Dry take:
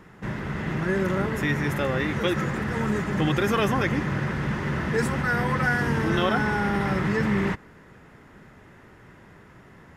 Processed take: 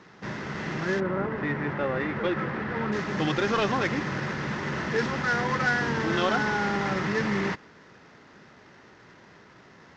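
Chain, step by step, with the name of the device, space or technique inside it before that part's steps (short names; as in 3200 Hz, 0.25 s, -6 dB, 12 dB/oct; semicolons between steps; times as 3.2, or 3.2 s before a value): early wireless headset (HPF 250 Hz 6 dB/oct; CVSD 32 kbps); 0.99–2.91 LPF 1500 Hz -> 2700 Hz 12 dB/oct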